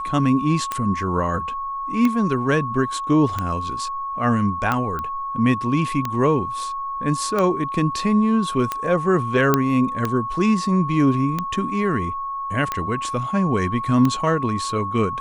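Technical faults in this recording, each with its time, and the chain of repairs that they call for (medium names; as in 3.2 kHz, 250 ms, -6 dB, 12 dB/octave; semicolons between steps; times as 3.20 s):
tick 45 rpm -9 dBFS
whine 1.1 kHz -25 dBFS
4.99 s: pop -16 dBFS
9.54 s: pop -3 dBFS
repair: de-click; band-stop 1.1 kHz, Q 30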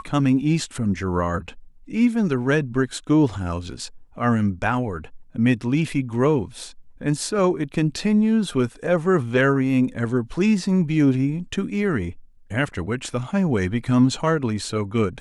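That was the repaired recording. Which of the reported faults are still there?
9.54 s: pop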